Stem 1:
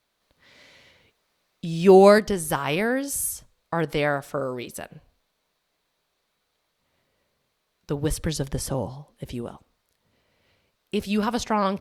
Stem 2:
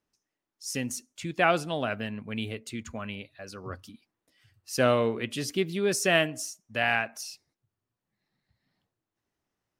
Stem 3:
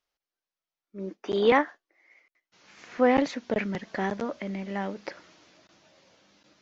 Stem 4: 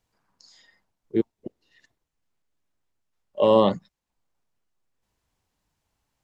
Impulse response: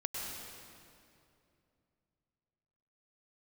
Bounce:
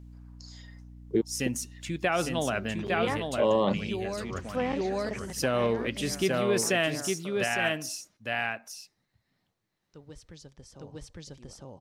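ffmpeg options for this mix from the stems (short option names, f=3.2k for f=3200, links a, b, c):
-filter_complex "[0:a]lowpass=f=6.3k:t=q:w=1.6,adelay=2050,volume=-15.5dB,asplit=2[a][b];[b]volume=-3dB[c];[1:a]bandreject=f=4.4k:w=24,adelay=650,volume=1dB,asplit=2[d][e];[e]volume=-5dB[f];[2:a]adelay=1550,volume=-9dB[g];[3:a]aeval=exprs='val(0)+0.00355*(sin(2*PI*60*n/s)+sin(2*PI*2*60*n/s)/2+sin(2*PI*3*60*n/s)/3+sin(2*PI*4*60*n/s)/4+sin(2*PI*5*60*n/s)/5)':c=same,volume=3dB,asplit=2[h][i];[i]apad=whole_len=611027[j];[a][j]sidechaingate=range=-7dB:threshold=-42dB:ratio=16:detection=peak[k];[c][f]amix=inputs=2:normalize=0,aecho=0:1:857:1[l];[k][d][g][h][l]amix=inputs=5:normalize=0,alimiter=limit=-15.5dB:level=0:latency=1:release=94"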